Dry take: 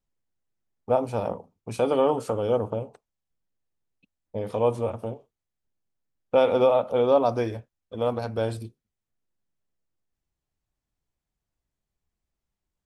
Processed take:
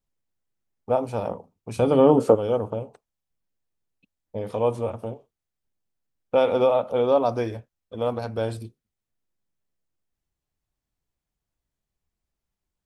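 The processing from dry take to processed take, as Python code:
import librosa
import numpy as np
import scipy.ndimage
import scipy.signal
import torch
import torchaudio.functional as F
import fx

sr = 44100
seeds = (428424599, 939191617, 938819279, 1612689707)

y = fx.peak_eq(x, sr, hz=fx.line((1.75, 63.0), (2.34, 410.0)), db=14.0, octaves=2.5, at=(1.75, 2.34), fade=0.02)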